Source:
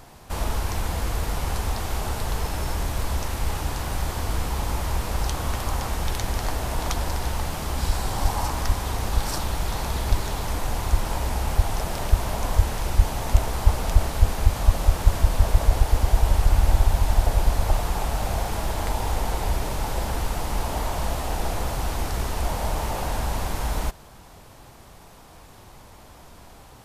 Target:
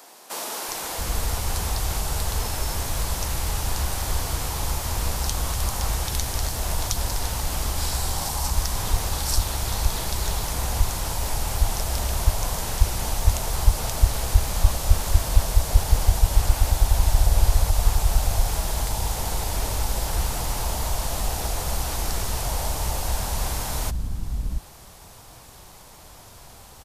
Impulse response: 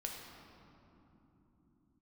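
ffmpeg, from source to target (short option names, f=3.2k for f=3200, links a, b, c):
-filter_complex "[0:a]acrossover=split=270[a][b];[a]adelay=680[c];[c][b]amix=inputs=2:normalize=0,acrossover=split=190|4000[d][e][f];[e]alimiter=level_in=1dB:limit=-24dB:level=0:latency=1:release=132,volume=-1dB[g];[f]acontrast=89[h];[d][g][h]amix=inputs=3:normalize=0"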